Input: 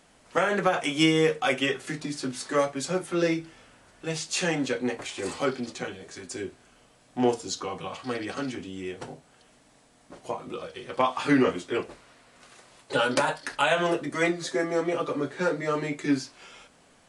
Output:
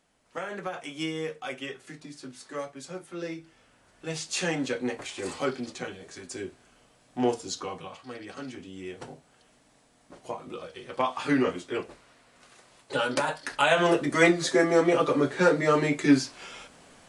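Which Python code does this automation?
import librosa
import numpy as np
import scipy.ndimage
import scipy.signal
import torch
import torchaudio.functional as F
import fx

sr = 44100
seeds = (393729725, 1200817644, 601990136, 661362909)

y = fx.gain(x, sr, db=fx.line((3.27, -11.0), (4.2, -2.0), (7.69, -2.0), (8.07, -10.0), (8.96, -3.0), (13.21, -3.0), (14.12, 5.0)))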